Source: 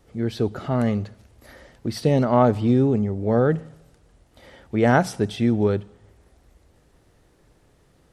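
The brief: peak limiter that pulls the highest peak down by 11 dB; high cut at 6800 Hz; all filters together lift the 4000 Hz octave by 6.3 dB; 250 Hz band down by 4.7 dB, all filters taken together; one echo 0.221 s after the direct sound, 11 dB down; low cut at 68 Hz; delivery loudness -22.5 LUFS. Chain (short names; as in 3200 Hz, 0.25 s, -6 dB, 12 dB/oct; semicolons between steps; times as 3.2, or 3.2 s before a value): HPF 68 Hz; LPF 6800 Hz; bell 250 Hz -5.5 dB; bell 4000 Hz +8.5 dB; limiter -14 dBFS; echo 0.221 s -11 dB; gain +4 dB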